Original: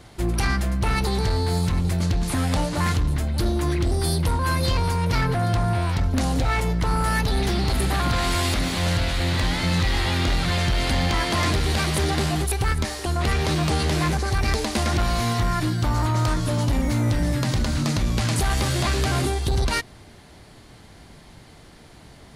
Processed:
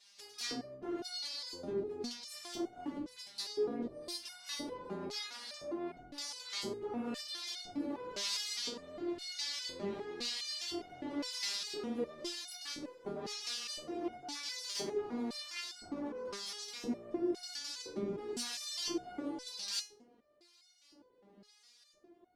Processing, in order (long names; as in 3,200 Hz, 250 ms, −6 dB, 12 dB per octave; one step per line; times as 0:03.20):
full-wave rectification
auto-filter band-pass square 0.98 Hz 340–5,000 Hz
step-sequenced resonator 4.9 Hz 200–720 Hz
level +12 dB